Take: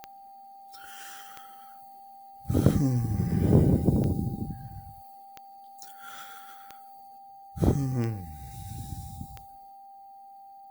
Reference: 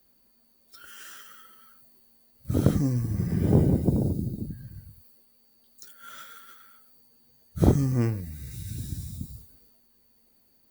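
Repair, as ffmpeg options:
ffmpeg -i in.wav -af "adeclick=threshold=4,bandreject=frequency=790:width=30,asetnsamples=nb_out_samples=441:pad=0,asendcmd='7.18 volume volume 4dB',volume=0dB" out.wav

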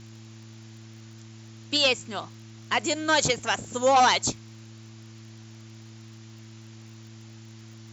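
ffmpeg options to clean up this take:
ffmpeg -i in.wav -af "adeclick=threshold=4,bandreject=frequency=111.3:width_type=h:width=4,bandreject=frequency=222.6:width_type=h:width=4,bandreject=frequency=333.9:width_type=h:width=4,afftdn=noise_reduction=25:noise_floor=-46" out.wav

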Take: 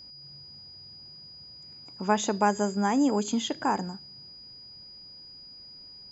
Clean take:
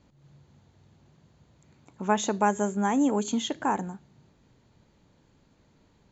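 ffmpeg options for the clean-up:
ffmpeg -i in.wav -af "bandreject=frequency=4900:width=30" out.wav

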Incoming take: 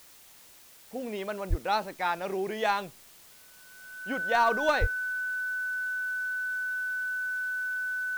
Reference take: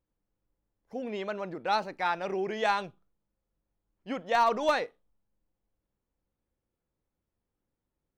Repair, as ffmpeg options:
ffmpeg -i in.wav -filter_complex "[0:a]bandreject=frequency=1500:width=30,asplit=3[link_01][link_02][link_03];[link_01]afade=type=out:start_time=1.49:duration=0.02[link_04];[link_02]highpass=frequency=140:width=0.5412,highpass=frequency=140:width=1.3066,afade=type=in:start_time=1.49:duration=0.02,afade=type=out:start_time=1.61:duration=0.02[link_05];[link_03]afade=type=in:start_time=1.61:duration=0.02[link_06];[link_04][link_05][link_06]amix=inputs=3:normalize=0,asplit=3[link_07][link_08][link_09];[link_07]afade=type=out:start_time=4.8:duration=0.02[link_10];[link_08]highpass=frequency=140:width=0.5412,highpass=frequency=140:width=1.3066,afade=type=in:start_time=4.8:duration=0.02,afade=type=out:start_time=4.92:duration=0.02[link_11];[link_09]afade=type=in:start_time=4.92:duration=0.02[link_12];[link_10][link_11][link_12]amix=inputs=3:normalize=0,afwtdn=0.002,asetnsamples=nb_out_samples=441:pad=0,asendcmd='5.54 volume volume -3dB',volume=0dB" out.wav

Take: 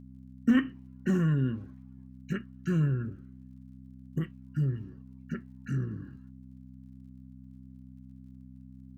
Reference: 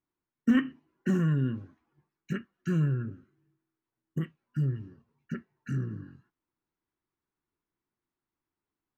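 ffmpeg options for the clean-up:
ffmpeg -i in.wav -af "adeclick=threshold=4,bandreject=frequency=64.4:width_type=h:width=4,bandreject=frequency=128.8:width_type=h:width=4,bandreject=frequency=193.2:width_type=h:width=4,bandreject=frequency=257.6:width_type=h:width=4" out.wav

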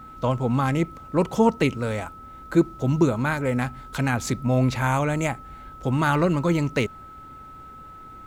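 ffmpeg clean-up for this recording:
ffmpeg -i in.wav -af "bandreject=frequency=1300:width=30" out.wav

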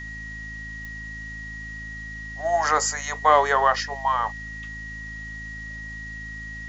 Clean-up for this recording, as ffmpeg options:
ffmpeg -i in.wav -af "adeclick=threshold=4,bandreject=frequency=53.9:width_type=h:width=4,bandreject=frequency=107.8:width_type=h:width=4,bandreject=frequency=161.7:width_type=h:width=4,bandreject=frequency=215.6:width_type=h:width=4,bandreject=frequency=269.5:width_type=h:width=4,bandreject=frequency=1900:width=30,afwtdn=0.0028" out.wav

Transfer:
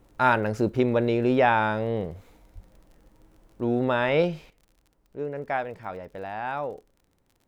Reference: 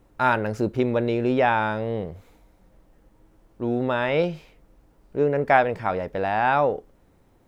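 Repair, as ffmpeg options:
ffmpeg -i in.wav -filter_complex "[0:a]adeclick=threshold=4,asplit=3[link_01][link_02][link_03];[link_01]afade=type=out:start_time=2.54:duration=0.02[link_04];[link_02]highpass=frequency=140:width=0.5412,highpass=frequency=140:width=1.3066,afade=type=in:start_time=2.54:duration=0.02,afade=type=out:start_time=2.66:duration=0.02[link_05];[link_03]afade=type=in:start_time=2.66:duration=0.02[link_06];[link_04][link_05][link_06]amix=inputs=3:normalize=0,asetnsamples=nb_out_samples=441:pad=0,asendcmd='4.5 volume volume 10.5dB',volume=0dB" out.wav

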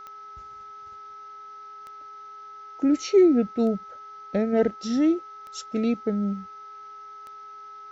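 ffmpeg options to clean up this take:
ffmpeg -i in.wav -af "adeclick=threshold=4,bandreject=frequency=409.6:width_type=h:width=4,bandreject=frequency=819.2:width_type=h:width=4,bandreject=frequency=1228.8:width_type=h:width=4,bandreject=frequency=1638.4:width_type=h:width=4,bandreject=frequency=2048:width_type=h:width=4,bandreject=frequency=1300:width=30,agate=range=-21dB:threshold=-35dB" out.wav

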